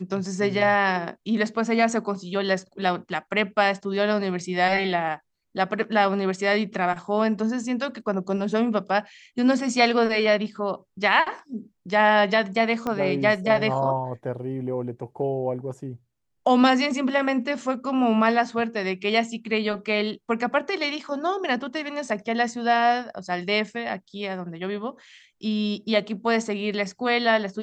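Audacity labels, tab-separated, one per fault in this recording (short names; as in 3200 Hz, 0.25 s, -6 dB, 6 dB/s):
12.870000	12.870000	pop -15 dBFS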